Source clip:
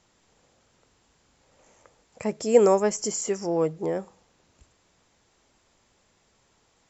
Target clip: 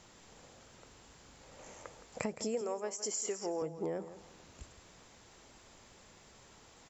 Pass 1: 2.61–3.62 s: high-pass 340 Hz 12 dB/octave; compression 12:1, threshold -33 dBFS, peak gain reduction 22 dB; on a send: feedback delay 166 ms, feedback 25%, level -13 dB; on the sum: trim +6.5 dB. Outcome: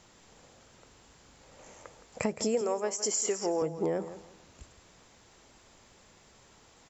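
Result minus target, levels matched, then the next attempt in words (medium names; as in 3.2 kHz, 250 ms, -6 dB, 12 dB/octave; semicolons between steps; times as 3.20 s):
compression: peak gain reduction -7 dB
2.61–3.62 s: high-pass 340 Hz 12 dB/octave; compression 12:1, threshold -40.5 dBFS, peak gain reduction 29 dB; on a send: feedback delay 166 ms, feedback 25%, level -13 dB; on the sum: trim +6.5 dB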